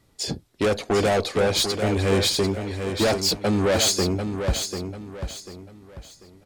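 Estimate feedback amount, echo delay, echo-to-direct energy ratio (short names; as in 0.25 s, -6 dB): 33%, 0.743 s, -7.0 dB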